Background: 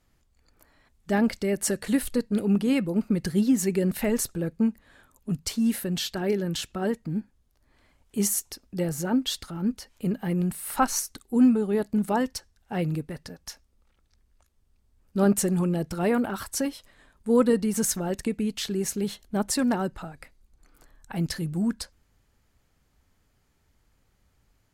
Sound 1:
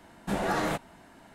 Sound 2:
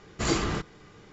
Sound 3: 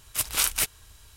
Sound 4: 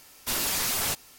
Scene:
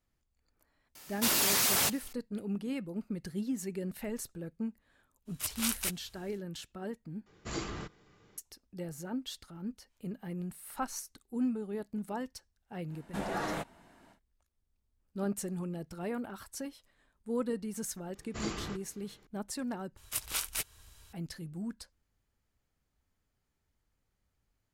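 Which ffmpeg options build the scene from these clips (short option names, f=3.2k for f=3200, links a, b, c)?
-filter_complex "[3:a]asplit=2[a][b];[2:a]asplit=2[c][d];[0:a]volume=-13dB[e];[4:a]highpass=98[f];[b]alimiter=limit=-12dB:level=0:latency=1:release=401[g];[e]asplit=3[h][i][j];[h]atrim=end=7.264[k];[c]atrim=end=1.12,asetpts=PTS-STARTPTS,volume=-11.5dB[l];[i]atrim=start=8.376:end=19.974[m];[g]atrim=end=1.16,asetpts=PTS-STARTPTS,volume=-5.5dB[n];[j]atrim=start=21.126[o];[f]atrim=end=1.18,asetpts=PTS-STARTPTS,afade=t=in:d=0.004:c=hsin,afade=t=out:st=1.176:d=0.004:c=hsin,adelay=950[p];[a]atrim=end=1.16,asetpts=PTS-STARTPTS,volume=-9dB,afade=t=in:d=0.05,afade=t=out:st=1.11:d=0.05,adelay=231525S[q];[1:a]atrim=end=1.34,asetpts=PTS-STARTPTS,volume=-6.5dB,afade=t=in:d=0.1,afade=t=out:st=1.24:d=0.1,adelay=12860[r];[d]atrim=end=1.12,asetpts=PTS-STARTPTS,volume=-11.5dB,afade=t=in:d=0.004:c=hsin,afade=t=out:st=1.116:d=0.004:c=hsin,adelay=18150[s];[k][l]acrossfade=d=0.004:c1=hsin:c2=hsin[t];[t][m]acrossfade=d=0.004:c1=hsin:c2=hsin[u];[u][n]acrossfade=d=0.004:c1=hsin:c2=hsin[v];[v][o]acrossfade=d=0.004:c1=hsin:c2=hsin[w];[w][p][q][r][s]amix=inputs=5:normalize=0"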